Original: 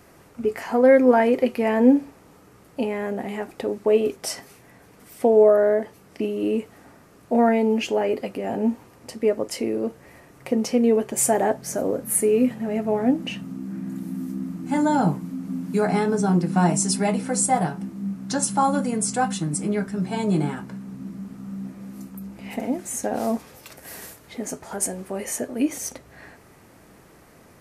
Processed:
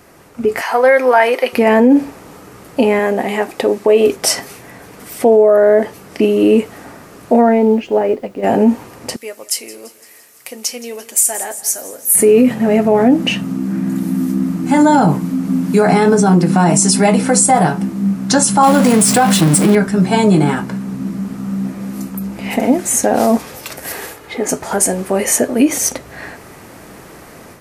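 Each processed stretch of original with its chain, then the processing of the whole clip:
0.61–1.53 HPF 790 Hz + notch 7200 Hz, Q 5.6
2.99–4.08 low shelf 220 Hz -8.5 dB + notch 1400 Hz, Q 13
7.41–8.42 LPF 1200 Hz 6 dB/oct + added noise pink -57 dBFS + upward expander, over -33 dBFS
9.16–12.15 pre-emphasis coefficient 0.97 + feedback echo 0.17 s, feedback 59%, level -18.5 dB
18.63–19.75 zero-crossing step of -27 dBFS + HPF 71 Hz + dynamic EQ 6600 Hz, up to -6 dB, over -41 dBFS, Q 3.2
23.92–24.49 tone controls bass -5 dB, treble -8 dB + comb 2.4 ms, depth 34%
whole clip: limiter -16.5 dBFS; AGC gain up to 8 dB; low shelf 200 Hz -4 dB; gain +7 dB

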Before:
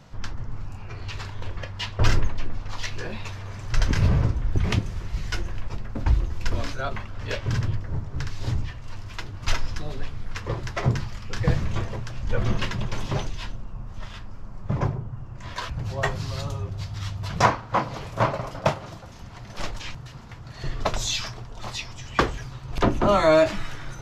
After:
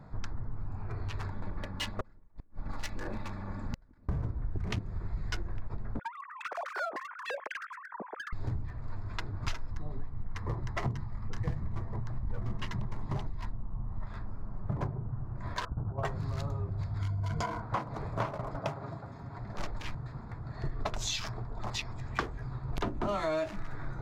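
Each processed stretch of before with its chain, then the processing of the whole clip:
1.32–4.09 minimum comb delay 3.5 ms + flipped gate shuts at -18 dBFS, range -37 dB
5.99–8.33 sine-wave speech + HPF 370 Hz + compressor 3:1, threshold -34 dBFS
9.7–14.07 comb 1 ms, depth 30% + mismatched tape noise reduction decoder only
15.65–16.05 steep low-pass 1500 Hz 72 dB/oct + gate -31 dBFS, range -8 dB
16.99–17.62 ripple EQ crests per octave 1.8, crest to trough 14 dB + compressor, threshold -22 dBFS
18.57–19.38 HPF 79 Hz + comb 7.3 ms, depth 38% + compressor 1.5:1, threshold -36 dBFS
whole clip: Wiener smoothing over 15 samples; notch 530 Hz, Q 12; compressor 6:1, threshold -30 dBFS

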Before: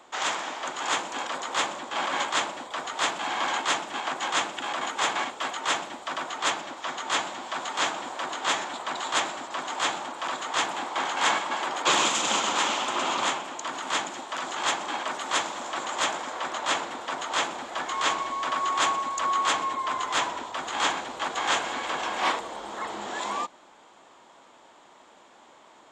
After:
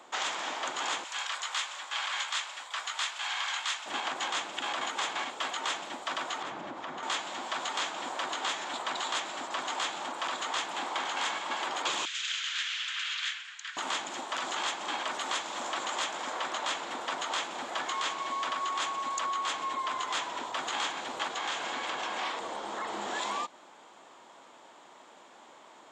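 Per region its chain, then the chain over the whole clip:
1.04–3.86 HPF 1300 Hz + doubler 19 ms -12 dB
6.42–7.03 HPF 85 Hz + RIAA curve playback + compressor, threshold -35 dBFS
12.05–13.77 Chebyshev high-pass 1600 Hz, order 4 + air absorption 110 m
21.32–22.94 LPF 8900 Hz + compressor 2.5:1, threshold -31 dBFS
whole clip: HPF 150 Hz 6 dB/oct; dynamic EQ 3700 Hz, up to +4 dB, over -39 dBFS, Q 0.73; compressor 6:1, threshold -30 dBFS

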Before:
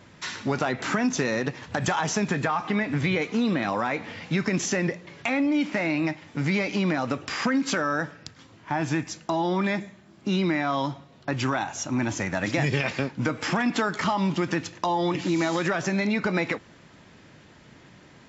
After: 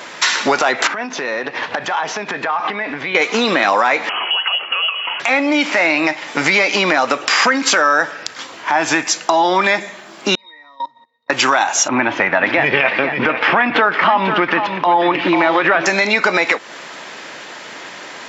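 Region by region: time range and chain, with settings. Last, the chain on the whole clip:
0.87–3.15 notch 1300 Hz, Q 26 + compressor 10:1, threshold -34 dBFS + air absorption 210 m
4.09–5.2 compressor 5:1, threshold -38 dBFS + inverted band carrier 3100 Hz
10.35–11.3 octave resonator A#, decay 0.22 s + level quantiser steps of 21 dB + tilt +3 dB/oct
11.88–15.86 LPF 3000 Hz 24 dB/oct + low shelf 110 Hz +11 dB + echo 0.492 s -10.5 dB
whole clip: HPF 570 Hz 12 dB/oct; compressor 2.5:1, threshold -37 dBFS; maximiser +24 dB; gain -1 dB

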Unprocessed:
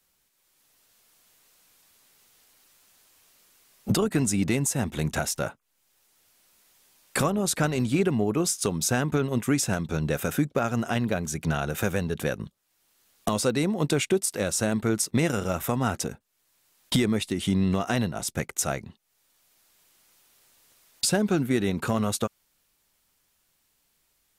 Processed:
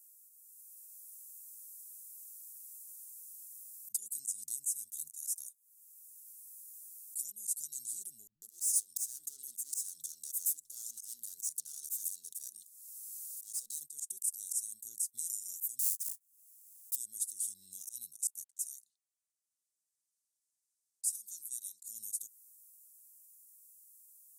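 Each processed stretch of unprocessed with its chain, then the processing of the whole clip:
8.27–13.81 overdrive pedal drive 26 dB, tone 3400 Hz, clips at -12.5 dBFS + compressor 16:1, threshold -24 dBFS + bands offset in time lows, highs 0.15 s, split 170 Hz
15.79–16.96 half-waves squared off + sample leveller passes 2
18.44–21.86 HPF 1100 Hz 6 dB/oct + low-pass opened by the level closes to 1500 Hz, open at -29.5 dBFS
whole clip: inverse Chebyshev high-pass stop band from 2600 Hz, stop band 60 dB; auto swell 0.124 s; compressor 1.5:1, threshold -55 dBFS; gain +13 dB

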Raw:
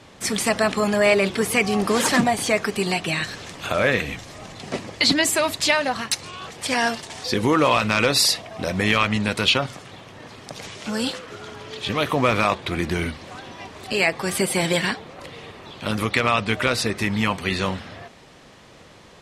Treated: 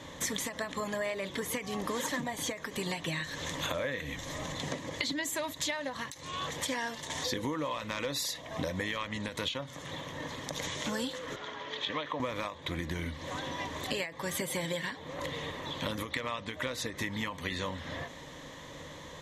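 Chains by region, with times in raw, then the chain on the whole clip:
11.36–12.2 HPF 650 Hz 6 dB/oct + air absorption 170 m
whole clip: ripple EQ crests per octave 1.1, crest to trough 9 dB; compressor 12:1, threshold -31 dBFS; ending taper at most 150 dB/s

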